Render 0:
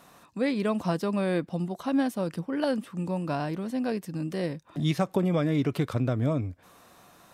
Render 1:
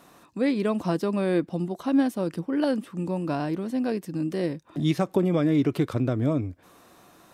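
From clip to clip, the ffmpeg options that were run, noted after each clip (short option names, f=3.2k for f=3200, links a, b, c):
-af "equalizer=f=330:t=o:w=0.69:g=6.5"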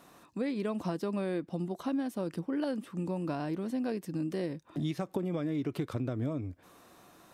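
-af "acompressor=threshold=-26dB:ratio=6,volume=-3.5dB"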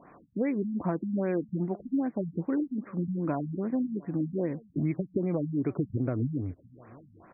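-af "aecho=1:1:699:0.0631,afftfilt=real='re*lt(b*sr/1024,230*pow(2600/230,0.5+0.5*sin(2*PI*2.5*pts/sr)))':imag='im*lt(b*sr/1024,230*pow(2600/230,0.5+0.5*sin(2*PI*2.5*pts/sr)))':win_size=1024:overlap=0.75,volume=4.5dB"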